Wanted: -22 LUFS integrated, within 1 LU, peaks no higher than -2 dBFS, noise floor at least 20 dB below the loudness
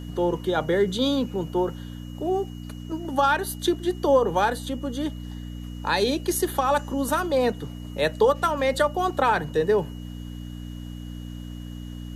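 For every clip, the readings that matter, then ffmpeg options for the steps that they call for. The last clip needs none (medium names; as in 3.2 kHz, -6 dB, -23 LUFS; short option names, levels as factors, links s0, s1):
hum 60 Hz; highest harmonic 300 Hz; hum level -34 dBFS; steady tone 2.9 kHz; tone level -51 dBFS; loudness -24.5 LUFS; peak level -9.0 dBFS; loudness target -22.0 LUFS
-> -af "bandreject=f=60:t=h:w=4,bandreject=f=120:t=h:w=4,bandreject=f=180:t=h:w=4,bandreject=f=240:t=h:w=4,bandreject=f=300:t=h:w=4"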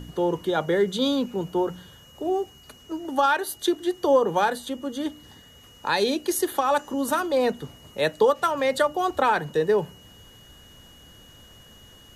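hum not found; steady tone 2.9 kHz; tone level -51 dBFS
-> -af "bandreject=f=2900:w=30"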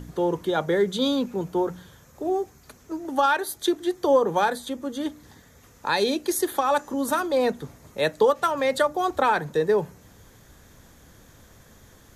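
steady tone not found; loudness -24.5 LUFS; peak level -9.0 dBFS; loudness target -22.0 LUFS
-> -af "volume=1.33"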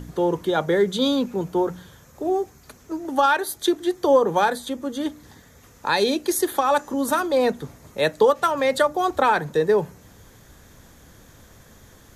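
loudness -22.0 LUFS; peak level -6.5 dBFS; noise floor -51 dBFS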